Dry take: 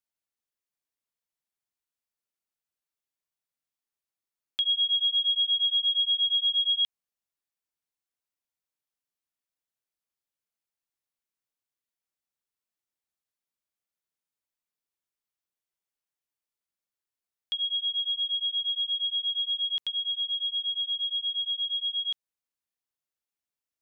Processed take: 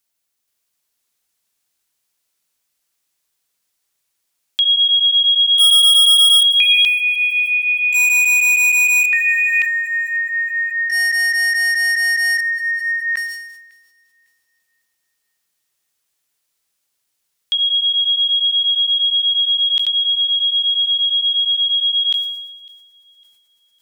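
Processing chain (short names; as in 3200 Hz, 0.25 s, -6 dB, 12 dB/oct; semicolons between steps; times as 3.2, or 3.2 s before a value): high shelf 2900 Hz +8 dB; in parallel at +2 dB: limiter -25.5 dBFS, peak gain reduction 10.5 dB; 5.58–6.43 on the sum: sample leveller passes 5; echoes that change speed 0.476 s, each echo -5 st, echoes 2; on a send: thin delay 0.553 s, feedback 31%, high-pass 2700 Hz, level -22.5 dB; on the sum: sustainer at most 50 dB/s; gain +3 dB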